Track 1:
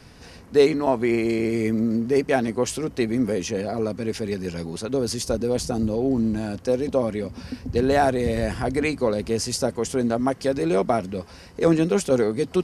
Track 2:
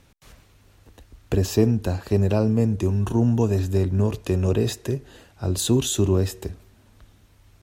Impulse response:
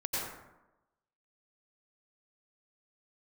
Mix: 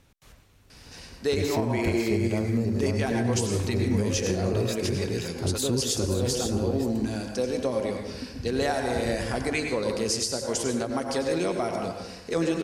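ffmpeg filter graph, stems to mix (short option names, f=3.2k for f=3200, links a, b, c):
-filter_complex "[0:a]equalizer=f=6k:w=0.33:g=9.5,adelay=700,volume=-9dB,asplit=2[a][b];[b]volume=-5.5dB[c];[1:a]volume=-4dB,asplit=2[d][e];[e]volume=-6dB[f];[2:a]atrim=start_sample=2205[g];[c][g]afir=irnorm=-1:irlink=0[h];[f]aecho=0:1:530:1[i];[a][d][h][i]amix=inputs=4:normalize=0,alimiter=limit=-15.5dB:level=0:latency=1:release=169"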